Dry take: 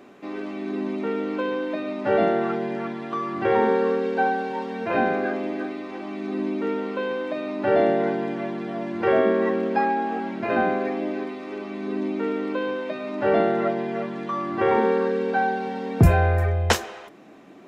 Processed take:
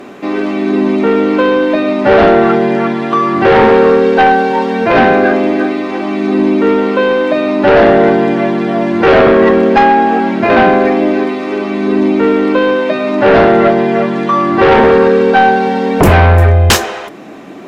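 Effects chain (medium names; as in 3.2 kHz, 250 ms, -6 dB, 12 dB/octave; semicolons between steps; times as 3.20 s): sine folder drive 10 dB, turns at -5.5 dBFS; trim +3 dB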